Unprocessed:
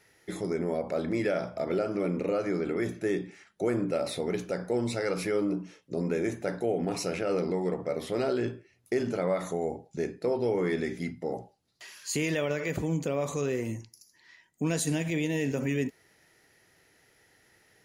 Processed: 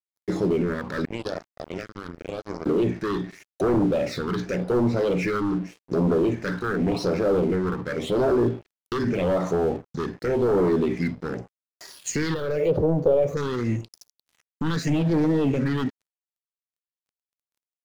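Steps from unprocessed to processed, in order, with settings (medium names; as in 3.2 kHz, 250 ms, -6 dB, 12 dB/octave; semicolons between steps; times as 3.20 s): bass shelf 210 Hz -2 dB; 1.05–2.66 s: power-law waveshaper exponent 3; sine folder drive 9 dB, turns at -16.5 dBFS; phase shifter stages 6, 0.87 Hz, lowest notch 630–2900 Hz; low-pass that closes with the level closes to 2.1 kHz, closed at -17.5 dBFS; crossover distortion -43 dBFS; 12.34–13.37 s: graphic EQ 250/500/1000/2000/4000/8000 Hz -9/+10/-4/-9/-7/-11 dB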